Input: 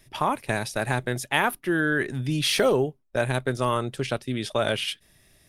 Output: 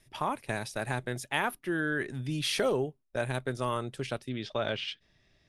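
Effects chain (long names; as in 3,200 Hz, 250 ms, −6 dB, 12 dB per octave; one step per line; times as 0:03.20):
low-pass filter 12,000 Hz 24 dB per octave, from 0:04.29 5,400 Hz
level −7 dB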